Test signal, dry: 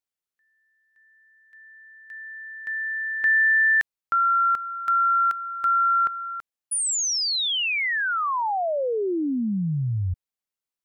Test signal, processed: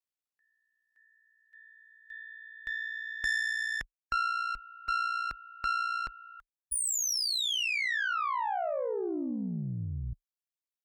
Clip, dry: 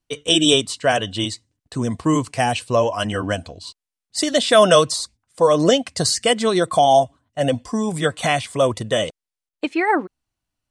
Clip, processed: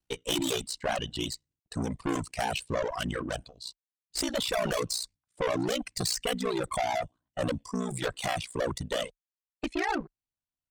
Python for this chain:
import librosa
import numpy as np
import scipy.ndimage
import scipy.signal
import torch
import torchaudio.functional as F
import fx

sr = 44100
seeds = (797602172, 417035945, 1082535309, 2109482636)

y = fx.tube_stage(x, sr, drive_db=23.0, bias=0.5)
y = y * np.sin(2.0 * np.pi * 30.0 * np.arange(len(y)) / sr)
y = fx.dereverb_blind(y, sr, rt60_s=1.8)